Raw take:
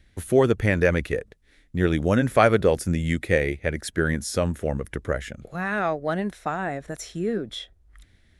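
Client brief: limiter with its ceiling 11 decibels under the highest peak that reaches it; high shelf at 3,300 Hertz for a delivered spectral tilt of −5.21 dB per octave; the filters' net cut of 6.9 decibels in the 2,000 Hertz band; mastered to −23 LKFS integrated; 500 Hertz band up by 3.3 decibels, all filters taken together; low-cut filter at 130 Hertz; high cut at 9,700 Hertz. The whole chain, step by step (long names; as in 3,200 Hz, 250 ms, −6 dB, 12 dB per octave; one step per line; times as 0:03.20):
high-pass filter 130 Hz
low-pass filter 9,700 Hz
parametric band 500 Hz +4.5 dB
parametric band 2,000 Hz −7.5 dB
high-shelf EQ 3,300 Hz −6 dB
level +4 dB
brickwall limiter −10 dBFS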